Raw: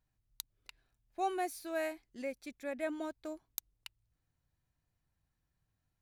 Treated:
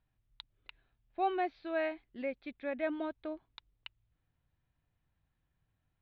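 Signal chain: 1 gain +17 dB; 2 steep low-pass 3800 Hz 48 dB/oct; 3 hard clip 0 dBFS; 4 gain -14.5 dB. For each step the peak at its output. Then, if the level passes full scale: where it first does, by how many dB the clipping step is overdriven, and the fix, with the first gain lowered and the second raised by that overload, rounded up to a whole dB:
-3.0, -6.0, -6.0, -20.5 dBFS; no overload

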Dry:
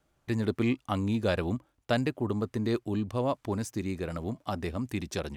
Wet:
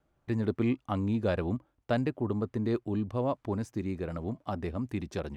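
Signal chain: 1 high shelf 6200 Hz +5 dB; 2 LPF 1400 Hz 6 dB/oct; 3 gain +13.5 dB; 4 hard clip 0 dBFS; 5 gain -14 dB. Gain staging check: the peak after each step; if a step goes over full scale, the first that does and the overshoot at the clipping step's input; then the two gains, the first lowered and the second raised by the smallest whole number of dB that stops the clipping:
-12.0, -16.0, -2.5, -2.5, -16.5 dBFS; no overload

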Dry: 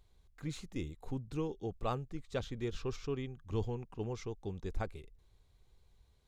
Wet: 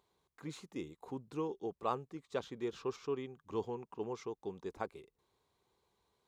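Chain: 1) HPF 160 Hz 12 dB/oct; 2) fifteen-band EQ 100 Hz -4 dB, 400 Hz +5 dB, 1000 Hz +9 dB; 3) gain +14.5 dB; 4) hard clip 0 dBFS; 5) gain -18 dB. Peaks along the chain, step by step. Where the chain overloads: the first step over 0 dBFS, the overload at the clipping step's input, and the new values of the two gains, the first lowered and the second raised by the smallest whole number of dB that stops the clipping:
-21.5, -17.5, -3.0, -3.0, -21.0 dBFS; no overload

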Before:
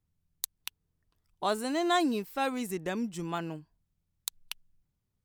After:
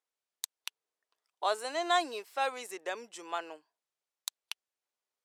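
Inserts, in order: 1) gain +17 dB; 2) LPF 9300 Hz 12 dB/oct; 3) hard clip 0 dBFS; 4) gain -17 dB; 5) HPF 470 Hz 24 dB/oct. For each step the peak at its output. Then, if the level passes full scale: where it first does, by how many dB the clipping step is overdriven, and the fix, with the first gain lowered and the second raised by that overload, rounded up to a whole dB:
+7.0, +3.5, 0.0, -17.0, -14.5 dBFS; step 1, 3.5 dB; step 1 +13 dB, step 4 -13 dB

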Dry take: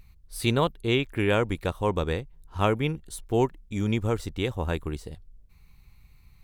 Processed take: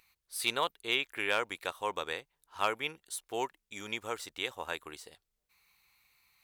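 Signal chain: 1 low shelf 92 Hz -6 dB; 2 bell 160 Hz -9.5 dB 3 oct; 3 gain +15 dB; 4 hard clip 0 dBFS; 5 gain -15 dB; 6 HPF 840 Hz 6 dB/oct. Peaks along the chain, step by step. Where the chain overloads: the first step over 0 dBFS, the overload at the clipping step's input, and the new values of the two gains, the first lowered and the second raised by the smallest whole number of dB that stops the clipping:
-8.0, -10.5, +4.5, 0.0, -15.0, -12.5 dBFS; step 3, 4.5 dB; step 3 +10 dB, step 5 -10 dB

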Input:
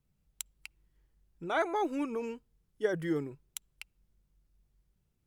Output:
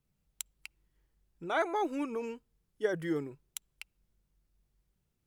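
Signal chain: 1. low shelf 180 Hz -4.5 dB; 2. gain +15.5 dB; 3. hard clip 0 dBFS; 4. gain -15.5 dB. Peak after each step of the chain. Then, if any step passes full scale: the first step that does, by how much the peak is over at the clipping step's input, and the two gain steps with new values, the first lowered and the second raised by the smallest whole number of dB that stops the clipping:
-17.0, -1.5, -1.5, -17.0 dBFS; no overload

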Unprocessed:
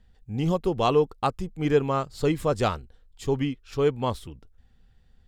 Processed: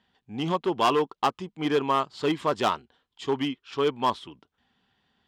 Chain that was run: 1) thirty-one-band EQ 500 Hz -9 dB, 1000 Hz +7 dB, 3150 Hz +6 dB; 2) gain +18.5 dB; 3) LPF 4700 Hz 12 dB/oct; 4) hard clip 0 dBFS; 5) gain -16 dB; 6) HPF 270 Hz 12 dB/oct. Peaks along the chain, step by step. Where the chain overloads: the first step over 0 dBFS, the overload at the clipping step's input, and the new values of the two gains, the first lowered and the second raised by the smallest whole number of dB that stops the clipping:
-8.0, +10.5, +10.0, 0.0, -16.0, -9.5 dBFS; step 2, 10.0 dB; step 2 +8.5 dB, step 5 -6 dB

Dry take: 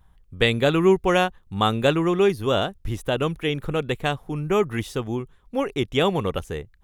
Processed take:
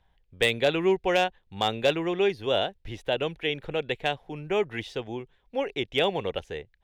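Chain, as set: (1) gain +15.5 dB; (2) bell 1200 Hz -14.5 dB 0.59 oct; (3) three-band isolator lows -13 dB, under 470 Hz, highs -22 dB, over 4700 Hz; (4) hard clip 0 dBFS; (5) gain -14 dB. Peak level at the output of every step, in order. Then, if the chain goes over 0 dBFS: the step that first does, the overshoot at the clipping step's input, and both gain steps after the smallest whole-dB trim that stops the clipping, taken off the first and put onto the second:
+10.5, +10.5, +7.5, 0.0, -14.0 dBFS; step 1, 7.5 dB; step 1 +7.5 dB, step 5 -6 dB

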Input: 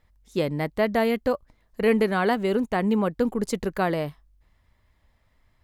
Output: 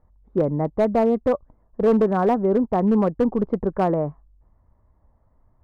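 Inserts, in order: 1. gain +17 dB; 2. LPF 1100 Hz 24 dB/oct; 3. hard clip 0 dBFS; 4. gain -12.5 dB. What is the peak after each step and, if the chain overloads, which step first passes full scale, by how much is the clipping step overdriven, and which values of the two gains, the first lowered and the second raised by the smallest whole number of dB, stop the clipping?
+7.5, +5.5, 0.0, -12.5 dBFS; step 1, 5.5 dB; step 1 +11 dB, step 4 -6.5 dB

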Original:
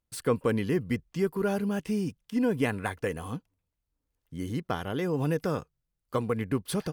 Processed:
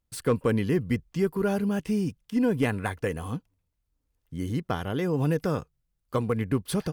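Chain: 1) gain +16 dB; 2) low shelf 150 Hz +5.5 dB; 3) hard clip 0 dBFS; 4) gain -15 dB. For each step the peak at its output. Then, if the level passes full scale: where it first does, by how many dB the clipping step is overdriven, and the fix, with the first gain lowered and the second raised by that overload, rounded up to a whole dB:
+1.5, +3.5, 0.0, -15.0 dBFS; step 1, 3.5 dB; step 1 +12 dB, step 4 -11 dB

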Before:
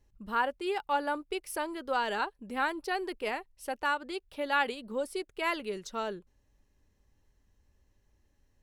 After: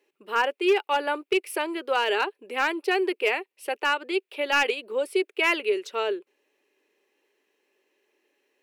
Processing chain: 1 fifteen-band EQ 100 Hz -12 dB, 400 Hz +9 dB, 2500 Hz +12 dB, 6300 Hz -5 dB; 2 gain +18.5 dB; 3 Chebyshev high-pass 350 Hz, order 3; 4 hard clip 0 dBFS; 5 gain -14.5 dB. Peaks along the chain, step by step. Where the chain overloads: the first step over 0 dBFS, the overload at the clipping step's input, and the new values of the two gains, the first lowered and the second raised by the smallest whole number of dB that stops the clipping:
-9.5, +9.0, +8.0, 0.0, -14.5 dBFS; step 2, 8.0 dB; step 2 +10.5 dB, step 5 -6.5 dB

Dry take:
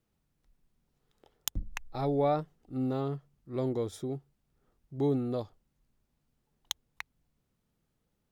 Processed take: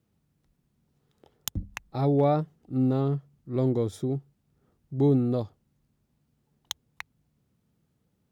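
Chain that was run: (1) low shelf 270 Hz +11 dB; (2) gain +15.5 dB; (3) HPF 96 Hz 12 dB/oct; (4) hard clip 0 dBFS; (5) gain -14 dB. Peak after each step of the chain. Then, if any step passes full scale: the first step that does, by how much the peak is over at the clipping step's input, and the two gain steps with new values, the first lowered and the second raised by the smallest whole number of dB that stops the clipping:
-11.5, +4.0, +4.0, 0.0, -14.0 dBFS; step 2, 4.0 dB; step 2 +11.5 dB, step 5 -10 dB

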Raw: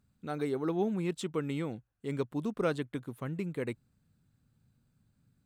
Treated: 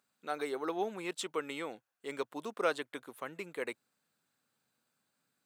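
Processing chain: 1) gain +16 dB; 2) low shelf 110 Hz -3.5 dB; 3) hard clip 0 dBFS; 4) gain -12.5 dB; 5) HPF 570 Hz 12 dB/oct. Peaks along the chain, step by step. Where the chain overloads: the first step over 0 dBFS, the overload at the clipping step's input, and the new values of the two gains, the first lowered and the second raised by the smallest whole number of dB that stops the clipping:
-3.0, -2.5, -2.5, -15.0, -17.0 dBFS; no overload

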